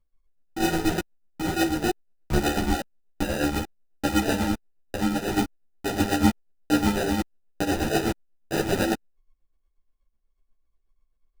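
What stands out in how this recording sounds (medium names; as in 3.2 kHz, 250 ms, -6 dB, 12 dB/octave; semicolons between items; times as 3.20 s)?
phasing stages 8, 3.3 Hz, lowest notch 460–1000 Hz; aliases and images of a low sample rate 1.1 kHz, jitter 0%; tremolo triangle 8.2 Hz, depth 70%; a shimmering, thickened sound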